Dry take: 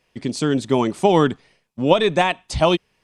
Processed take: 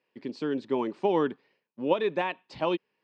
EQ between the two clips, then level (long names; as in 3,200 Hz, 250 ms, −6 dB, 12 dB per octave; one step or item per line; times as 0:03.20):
high-frequency loss of the air 220 metres
loudspeaker in its box 300–8,200 Hz, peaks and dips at 690 Hz −9 dB, 1,300 Hz −6 dB, 2,100 Hz −4 dB, 3,400 Hz −6 dB, 6,300 Hz −7 dB
−6.0 dB